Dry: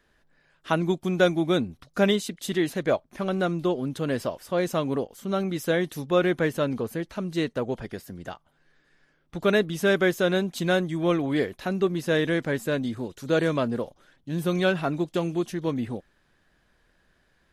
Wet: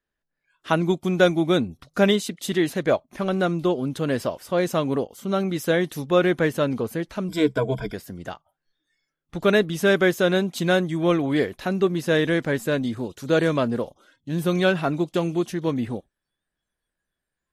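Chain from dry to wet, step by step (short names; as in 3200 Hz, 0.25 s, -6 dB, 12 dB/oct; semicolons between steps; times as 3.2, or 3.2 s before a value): spectral noise reduction 22 dB; 7.28–7.94 ripple EQ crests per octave 1.7, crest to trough 17 dB; gain +3 dB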